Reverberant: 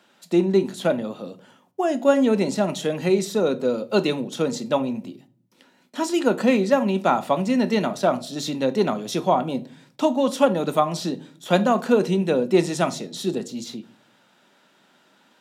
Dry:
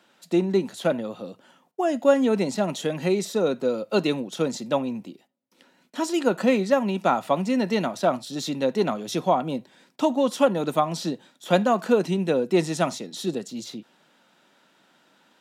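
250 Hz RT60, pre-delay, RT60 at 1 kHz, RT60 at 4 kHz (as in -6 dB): 0.80 s, 5 ms, 0.40 s, 0.30 s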